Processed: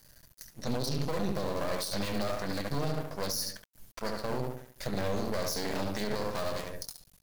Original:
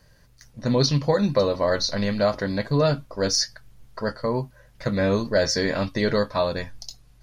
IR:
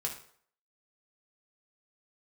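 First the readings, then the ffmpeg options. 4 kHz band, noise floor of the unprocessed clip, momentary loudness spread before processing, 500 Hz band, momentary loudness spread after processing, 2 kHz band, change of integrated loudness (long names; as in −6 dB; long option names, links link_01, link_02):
−10.5 dB, −55 dBFS, 11 LU, −11.5 dB, 8 LU, −10.0 dB, −10.5 dB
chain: -filter_complex "[0:a]asplit=2[link_01][link_02];[link_02]adelay=71,lowpass=frequency=1500:poles=1,volume=-3dB,asplit=2[link_03][link_04];[link_04]adelay=71,lowpass=frequency=1500:poles=1,volume=0.46,asplit=2[link_05][link_06];[link_06]adelay=71,lowpass=frequency=1500:poles=1,volume=0.46,asplit=2[link_07][link_08];[link_08]adelay=71,lowpass=frequency=1500:poles=1,volume=0.46,asplit=2[link_09][link_10];[link_10]adelay=71,lowpass=frequency=1500:poles=1,volume=0.46,asplit=2[link_11][link_12];[link_12]adelay=71,lowpass=frequency=1500:poles=1,volume=0.46[link_13];[link_01][link_03][link_05][link_07][link_09][link_11][link_13]amix=inputs=7:normalize=0,acrossover=split=480[link_14][link_15];[link_15]acompressor=threshold=-28dB:ratio=4[link_16];[link_14][link_16]amix=inputs=2:normalize=0,aeval=exprs='max(val(0),0)':channel_layout=same,aemphasis=mode=production:type=75fm,alimiter=limit=-18.5dB:level=0:latency=1:release=50,volume=-2.5dB"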